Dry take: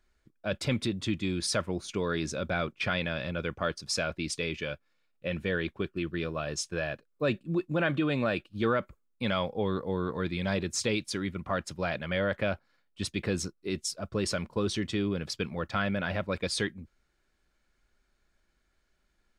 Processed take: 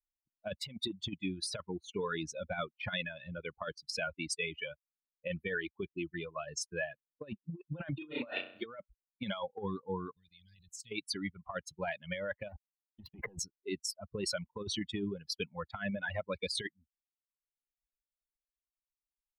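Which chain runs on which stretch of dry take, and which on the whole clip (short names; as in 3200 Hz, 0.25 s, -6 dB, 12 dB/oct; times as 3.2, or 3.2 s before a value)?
7.98–8.66 tone controls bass -9 dB, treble +3 dB + flutter echo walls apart 5.6 m, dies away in 1.2 s
10.11–10.92 EQ curve 120 Hz 0 dB, 760 Hz -21 dB, 2600 Hz -4 dB, 7100 Hz +7 dB + level quantiser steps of 14 dB
12.49–13.39 LPF 1600 Hz + sample leveller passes 3
whole clip: per-bin expansion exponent 2; reverb removal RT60 1.1 s; negative-ratio compressor -38 dBFS, ratio -0.5; gain +1.5 dB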